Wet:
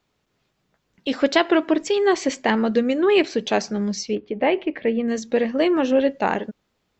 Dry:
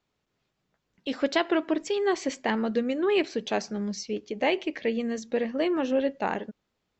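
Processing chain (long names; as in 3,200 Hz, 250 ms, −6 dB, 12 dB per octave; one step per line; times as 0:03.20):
0:04.15–0:05.08: high-frequency loss of the air 420 metres
level +7 dB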